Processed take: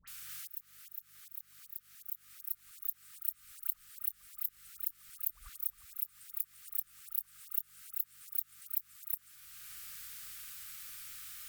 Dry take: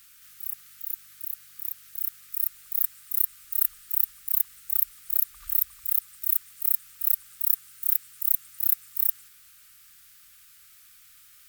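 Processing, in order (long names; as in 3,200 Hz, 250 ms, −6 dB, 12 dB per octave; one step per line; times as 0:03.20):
volume swells 618 ms
all-pass dispersion highs, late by 77 ms, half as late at 1,400 Hz
level +6 dB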